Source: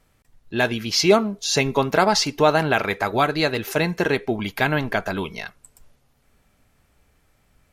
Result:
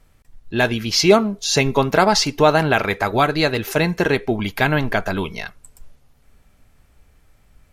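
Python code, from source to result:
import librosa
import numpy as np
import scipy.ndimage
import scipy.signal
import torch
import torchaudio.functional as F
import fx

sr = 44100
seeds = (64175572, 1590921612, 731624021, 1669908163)

y = fx.low_shelf(x, sr, hz=70.0, db=10.0)
y = F.gain(torch.from_numpy(y), 2.5).numpy()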